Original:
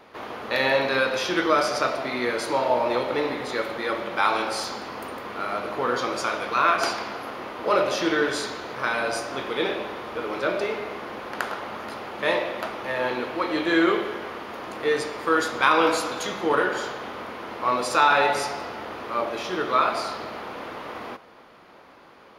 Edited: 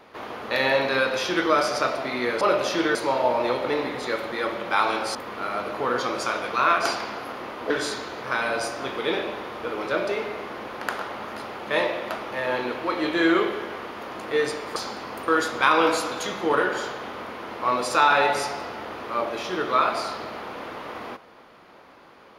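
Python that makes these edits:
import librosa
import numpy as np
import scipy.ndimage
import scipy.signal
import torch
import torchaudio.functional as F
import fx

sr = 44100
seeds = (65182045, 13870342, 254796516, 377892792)

y = fx.edit(x, sr, fx.move(start_s=4.61, length_s=0.52, to_s=15.28),
    fx.move(start_s=7.68, length_s=0.54, to_s=2.41), tone=tone)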